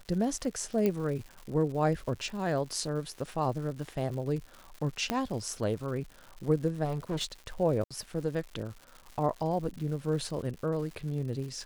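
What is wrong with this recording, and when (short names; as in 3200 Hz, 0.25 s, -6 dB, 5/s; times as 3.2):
crackle 220/s -40 dBFS
0.86 pop -16 dBFS
5.1 pop -14 dBFS
6.84–7.25 clipped -28 dBFS
7.84–7.91 gap 66 ms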